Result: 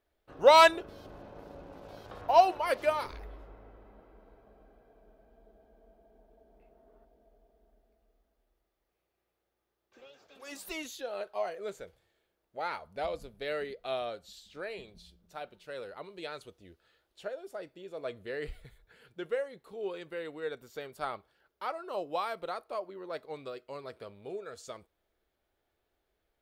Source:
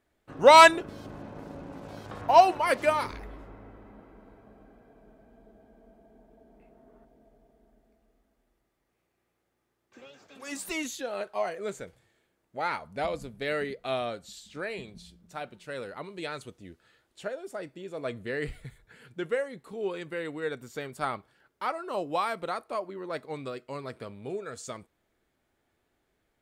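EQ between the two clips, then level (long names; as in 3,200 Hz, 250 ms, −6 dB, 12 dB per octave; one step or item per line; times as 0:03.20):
octave-band graphic EQ 125/250/1,000/2,000/8,000 Hz −10/−9/−4/−6/−10 dB
0.0 dB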